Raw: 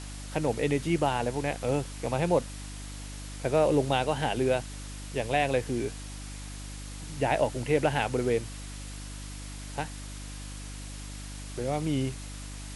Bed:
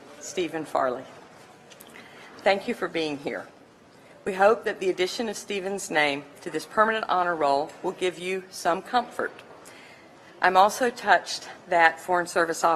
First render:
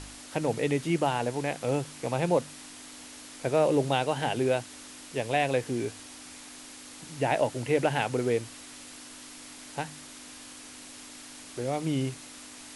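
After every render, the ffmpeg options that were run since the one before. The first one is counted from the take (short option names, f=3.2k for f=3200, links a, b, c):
-af "bandreject=f=50:t=h:w=4,bandreject=f=100:t=h:w=4,bandreject=f=150:t=h:w=4,bandreject=f=200:t=h:w=4"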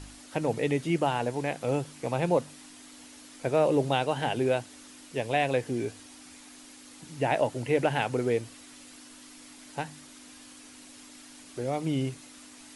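-af "afftdn=nr=6:nf=-47"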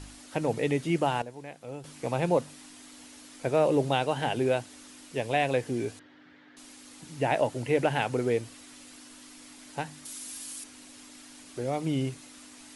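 -filter_complex "[0:a]asettb=1/sr,asplit=3[a][b][c];[a]atrim=end=5.994[d];[b]atrim=start=5.99:end=6.57,asetpts=PTS-STARTPTS,afade=t=in:d=0.004:c=qsin,afade=t=out:st=0.576:d=0.004:c=qsin,highpass=130,equalizer=f=150:t=q:w=4:g=7,equalizer=f=230:t=q:w=4:g=-8,equalizer=f=760:t=q:w=4:g=-6,equalizer=f=1.1k:t=q:w=4:g=-6,equalizer=f=1.7k:t=q:w=4:g=5,equalizer=f=2.5k:t=q:w=4:g=-10,lowpass=f=2.9k:w=0.5412,lowpass=f=2.9k:w=1.3066[e];[c]atrim=start=6.566[f];[d][e]acrossfade=d=0.004:c1=hsin:c2=qsin[g];[g][f]acrossfade=d=0.004:c1=qsin:c2=hsin,asettb=1/sr,asplit=3[h][i][j];[h]atrim=end=10.054[k];[i]atrim=start=10.05:end=10.64,asetpts=PTS-STARTPTS,afade=t=in:d=0.004:c=qsin,afade=t=out:st=0.586:d=0.004:c=qsin,aemphasis=mode=production:type=75fm[l];[j]atrim=start=10.636[m];[k][l]acrossfade=d=0.004:c1=hsin:c2=qsin[n];[n][m]acrossfade=d=0.004:c1=qsin:c2=hsin,asplit=3[o][p][q];[o]atrim=end=1.222[r];[p]atrim=start=1.218:end=1.842,asetpts=PTS-STARTPTS,volume=-12dB[s];[q]atrim=start=1.838[t];[r][s]acrossfade=d=0.004:c1=hsin:c2=hsin[u];[u][t]acrossfade=d=0.004:c1=hsin:c2=hsin"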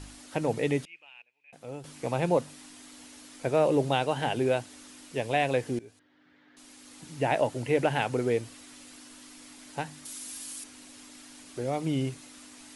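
-filter_complex "[0:a]asettb=1/sr,asplit=3[a][b][c];[a]atrim=end=0.854[d];[b]atrim=start=0.85:end=1.53,asetpts=PTS-STARTPTS,afade=t=in:d=0.004:c=qsin,afade=t=out:st=0.676:d=0.004:c=qsin,bandpass=f=2.5k:t=q:w=18[e];[c]atrim=start=1.526[f];[d][e]acrossfade=d=0.004:c1=hsin:c2=qsin[g];[g][f]acrossfade=d=0.004:c1=qsin:c2=hsin,asplit=2[h][i];[h]atrim=end=5.79,asetpts=PTS-STARTPTS,afade=t=out:st=5.786:d=0.004:c=hsin:silence=0.1[j];[i]atrim=start=5.79,asetpts=PTS-STARTPTS,afade=t=in:d=1.25:silence=0.1[k];[j][k]concat=n=2:v=0:a=1"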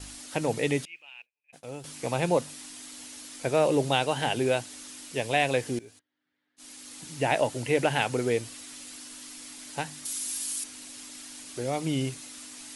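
-af "agate=range=-21dB:threshold=-53dB:ratio=16:detection=peak,highshelf=f=2.5k:g=8.5"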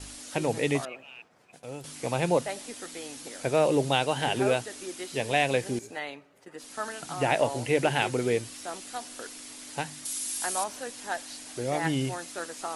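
-filter_complex "[1:a]volume=-14dB[a];[0:a][a]amix=inputs=2:normalize=0"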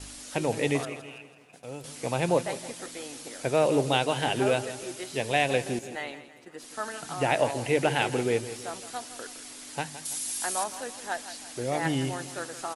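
-af "aecho=1:1:165|330|495|660|825:0.211|0.101|0.0487|0.0234|0.0112"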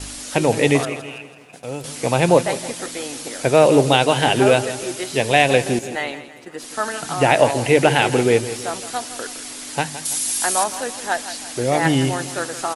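-af "volume=10.5dB,alimiter=limit=-1dB:level=0:latency=1"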